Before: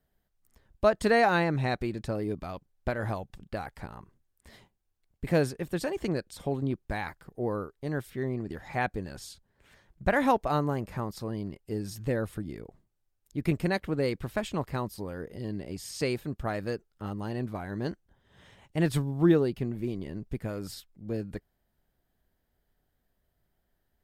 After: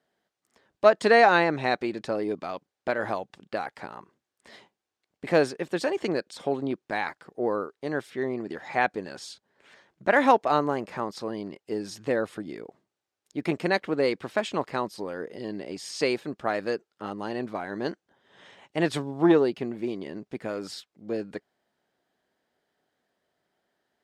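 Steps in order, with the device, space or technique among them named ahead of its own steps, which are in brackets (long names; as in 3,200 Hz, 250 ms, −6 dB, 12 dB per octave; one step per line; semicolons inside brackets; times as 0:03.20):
public-address speaker with an overloaded transformer (saturating transformer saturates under 300 Hz; band-pass filter 300–6,500 Hz)
level +6 dB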